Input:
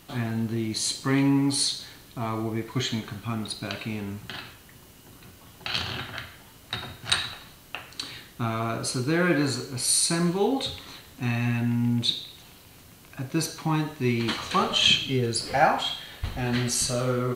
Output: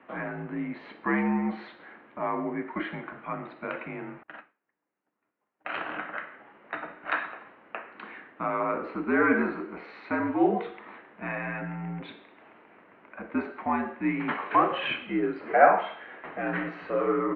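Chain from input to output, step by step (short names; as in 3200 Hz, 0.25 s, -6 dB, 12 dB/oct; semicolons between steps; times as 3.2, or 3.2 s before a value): mistuned SSB -68 Hz 340–2200 Hz; 4.23–5.72 upward expander 2.5:1, over -56 dBFS; gain +3 dB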